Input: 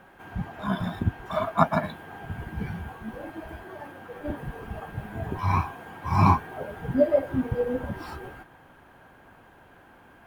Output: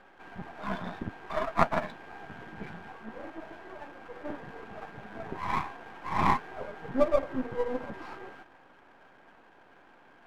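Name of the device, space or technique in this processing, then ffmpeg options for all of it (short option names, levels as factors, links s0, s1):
crystal radio: -af "highpass=240,lowpass=2900,aeval=exprs='if(lt(val(0),0),0.251*val(0),val(0))':c=same"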